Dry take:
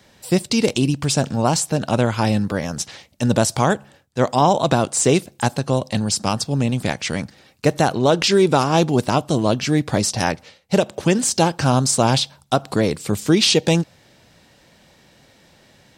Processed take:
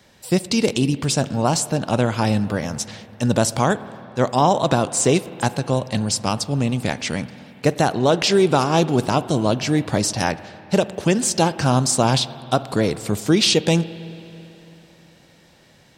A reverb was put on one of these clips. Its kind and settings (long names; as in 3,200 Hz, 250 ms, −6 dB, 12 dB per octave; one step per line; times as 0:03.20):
spring reverb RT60 3.2 s, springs 48/55 ms, chirp 65 ms, DRR 15 dB
level −1 dB